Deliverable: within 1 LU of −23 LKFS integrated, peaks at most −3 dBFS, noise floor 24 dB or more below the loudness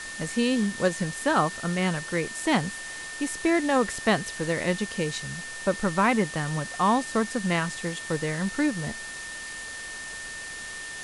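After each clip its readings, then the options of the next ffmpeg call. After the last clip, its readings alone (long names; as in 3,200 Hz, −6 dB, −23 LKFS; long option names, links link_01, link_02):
interfering tone 1,800 Hz; level of the tone −37 dBFS; background noise floor −38 dBFS; target noise floor −51 dBFS; integrated loudness −27.0 LKFS; sample peak −8.0 dBFS; target loudness −23.0 LKFS
→ -af "bandreject=frequency=1800:width=30"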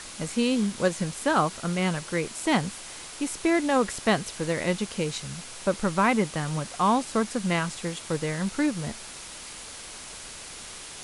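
interfering tone none found; background noise floor −42 dBFS; target noise floor −51 dBFS
→ -af "afftdn=noise_reduction=9:noise_floor=-42"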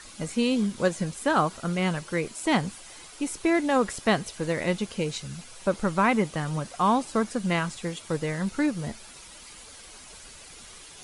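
background noise floor −47 dBFS; target noise floor −51 dBFS
→ -af "afftdn=noise_reduction=6:noise_floor=-47"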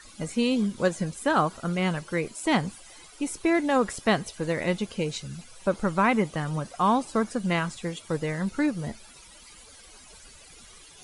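background noise floor −50 dBFS; target noise floor −51 dBFS
→ -af "afftdn=noise_reduction=6:noise_floor=-50"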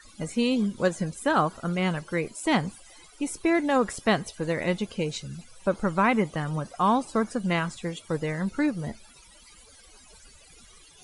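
background noise floor −53 dBFS; integrated loudness −27.0 LKFS; sample peak −8.0 dBFS; target loudness −23.0 LKFS
→ -af "volume=4dB"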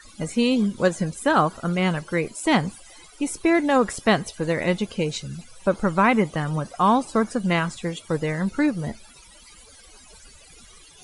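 integrated loudness −23.0 LKFS; sample peak −4.0 dBFS; background noise floor −49 dBFS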